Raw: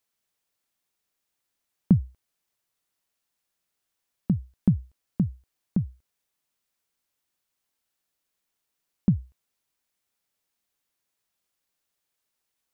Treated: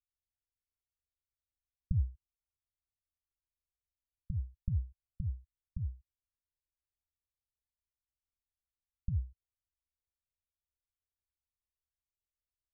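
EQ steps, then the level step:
inverse Chebyshev low-pass filter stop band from 520 Hz, stop band 80 dB
+3.0 dB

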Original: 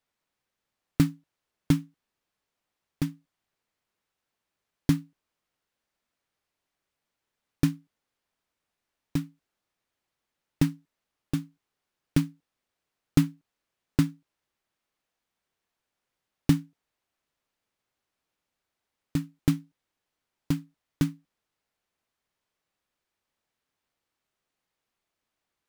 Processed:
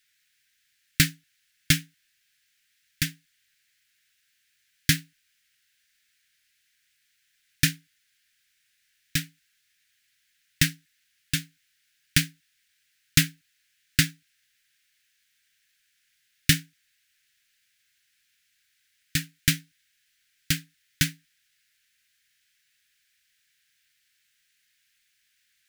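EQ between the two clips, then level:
drawn EQ curve 130 Hz 0 dB, 950 Hz −27 dB, 1,600 Hz +15 dB
+1.5 dB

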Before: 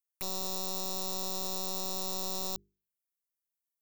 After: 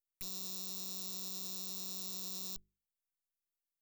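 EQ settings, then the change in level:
guitar amp tone stack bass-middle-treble 6-0-2
+8.5 dB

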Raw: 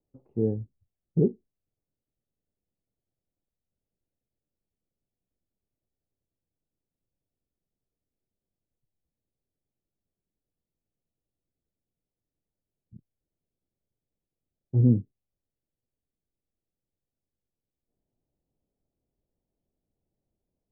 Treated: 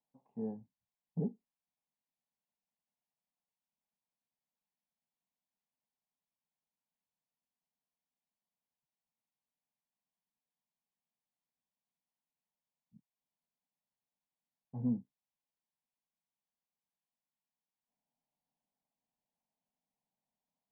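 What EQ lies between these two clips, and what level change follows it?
resonant band-pass 540 Hz, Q 0.54
low shelf with overshoot 750 Hz −12 dB, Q 3
phaser with its sweep stopped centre 350 Hz, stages 6
+7.5 dB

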